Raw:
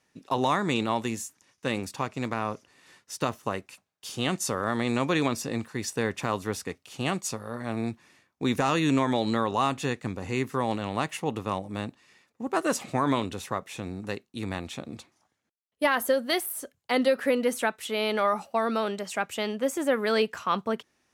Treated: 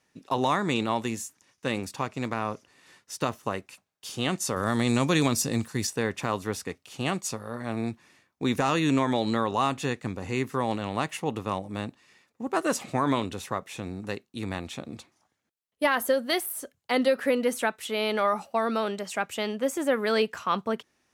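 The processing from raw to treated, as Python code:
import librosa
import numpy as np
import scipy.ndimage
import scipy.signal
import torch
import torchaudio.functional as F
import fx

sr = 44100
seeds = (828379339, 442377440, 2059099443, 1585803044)

y = fx.bass_treble(x, sr, bass_db=6, treble_db=10, at=(4.56, 5.87))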